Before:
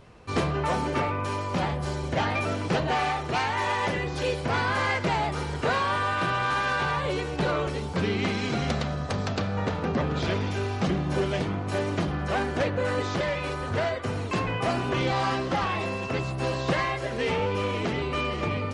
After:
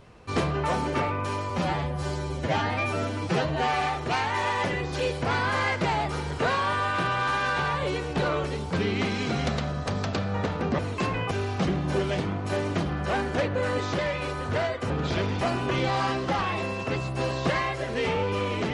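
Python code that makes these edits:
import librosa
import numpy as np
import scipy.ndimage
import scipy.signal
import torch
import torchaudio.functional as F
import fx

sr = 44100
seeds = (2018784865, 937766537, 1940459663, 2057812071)

y = fx.edit(x, sr, fx.stretch_span(start_s=1.5, length_s=1.54, factor=1.5),
    fx.swap(start_s=10.02, length_s=0.51, other_s=14.12, other_length_s=0.52), tone=tone)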